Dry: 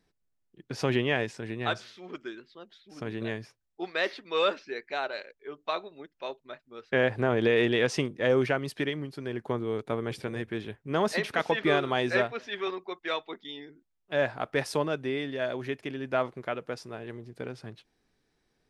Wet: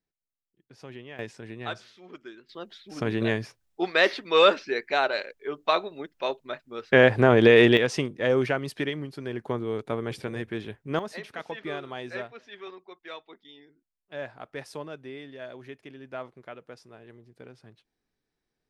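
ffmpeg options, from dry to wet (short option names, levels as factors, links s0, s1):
-af "asetnsamples=n=441:p=0,asendcmd='1.19 volume volume -4.5dB;2.49 volume volume 8dB;7.77 volume volume 1dB;10.99 volume volume -9.5dB',volume=0.15"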